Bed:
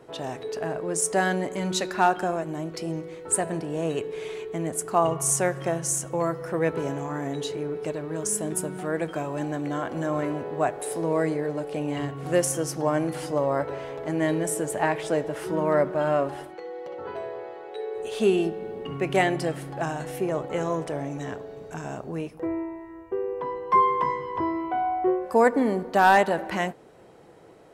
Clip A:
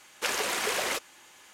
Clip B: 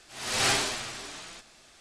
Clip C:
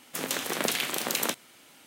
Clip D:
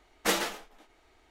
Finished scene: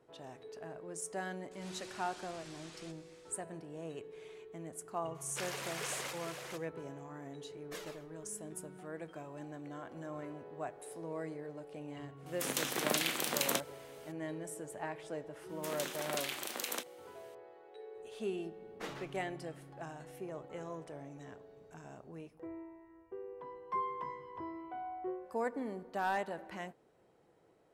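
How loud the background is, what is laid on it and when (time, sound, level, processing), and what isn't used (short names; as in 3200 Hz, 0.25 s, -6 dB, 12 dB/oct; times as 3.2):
bed -17 dB
1.51 add B -9.5 dB + compressor 12:1, threshold -40 dBFS
5.14 add A -12.5 dB, fades 0.02 s + echo 0.452 s -5.5 dB
7.46 add D -16 dB + cascading flanger falling 1.8 Hz
12.26 add C -5 dB
15.49 add C -10.5 dB + HPF 260 Hz
18.55 add D -15.5 dB + LPF 2400 Hz 6 dB/oct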